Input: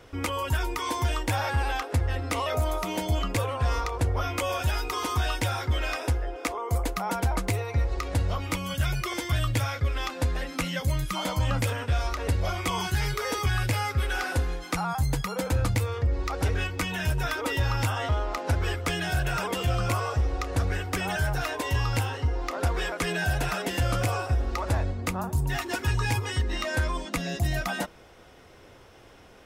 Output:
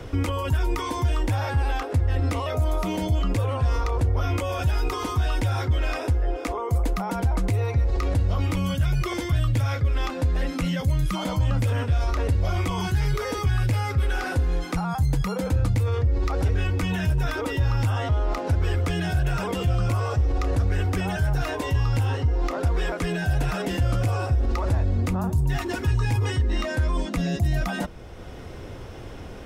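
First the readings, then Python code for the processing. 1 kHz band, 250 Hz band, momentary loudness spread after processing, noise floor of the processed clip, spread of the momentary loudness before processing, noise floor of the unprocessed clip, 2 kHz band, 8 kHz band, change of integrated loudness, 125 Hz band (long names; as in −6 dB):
−0.5 dB, +5.0 dB, 3 LU, −37 dBFS, 3 LU, −51 dBFS, −2.0 dB, −4.0 dB, +3.5 dB, +5.0 dB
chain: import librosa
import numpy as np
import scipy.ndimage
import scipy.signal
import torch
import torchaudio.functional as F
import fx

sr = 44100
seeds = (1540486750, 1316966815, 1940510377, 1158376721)

p1 = fx.high_shelf(x, sr, hz=12000.0, db=-3.0)
p2 = fx.over_compress(p1, sr, threshold_db=-32.0, ratio=-1.0)
p3 = p1 + F.gain(torch.from_numpy(p2), 0.0).numpy()
p4 = fx.low_shelf(p3, sr, hz=430.0, db=10.5)
p5 = fx.band_squash(p4, sr, depth_pct=40)
y = F.gain(torch.from_numpy(p5), -8.0).numpy()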